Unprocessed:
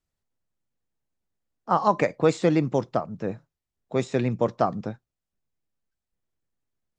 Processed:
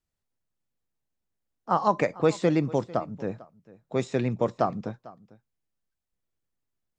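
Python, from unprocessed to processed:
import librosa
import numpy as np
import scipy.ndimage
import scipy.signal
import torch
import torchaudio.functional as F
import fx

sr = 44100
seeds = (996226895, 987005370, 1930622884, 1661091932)

y = x + 10.0 ** (-20.5 / 20.0) * np.pad(x, (int(448 * sr / 1000.0), 0))[:len(x)]
y = y * librosa.db_to_amplitude(-2.0)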